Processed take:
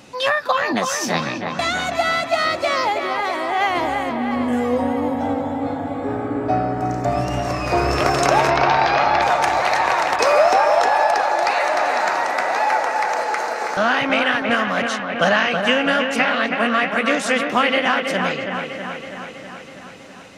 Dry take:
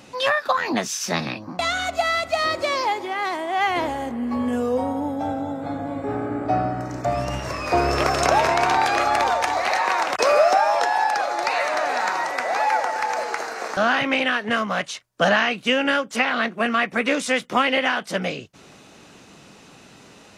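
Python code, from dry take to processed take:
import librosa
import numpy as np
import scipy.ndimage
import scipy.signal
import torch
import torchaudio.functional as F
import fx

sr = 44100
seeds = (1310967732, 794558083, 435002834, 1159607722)

y = fx.steep_lowpass(x, sr, hz=5500.0, slope=36, at=(8.5, 9.22))
y = fx.echo_wet_lowpass(y, sr, ms=324, feedback_pct=66, hz=3000.0, wet_db=-5.5)
y = y * librosa.db_to_amplitude(1.5)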